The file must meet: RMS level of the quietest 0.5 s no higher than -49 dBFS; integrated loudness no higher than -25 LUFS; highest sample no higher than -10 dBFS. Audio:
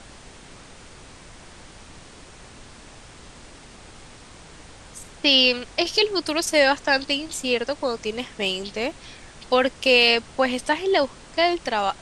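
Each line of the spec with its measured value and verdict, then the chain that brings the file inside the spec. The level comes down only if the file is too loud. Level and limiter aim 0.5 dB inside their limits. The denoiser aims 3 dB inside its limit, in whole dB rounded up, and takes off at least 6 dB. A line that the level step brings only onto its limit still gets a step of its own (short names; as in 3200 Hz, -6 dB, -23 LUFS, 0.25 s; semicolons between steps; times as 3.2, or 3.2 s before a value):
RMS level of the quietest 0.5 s -45 dBFS: fail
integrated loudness -21.0 LUFS: fail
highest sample -5.0 dBFS: fail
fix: gain -4.5 dB; limiter -10.5 dBFS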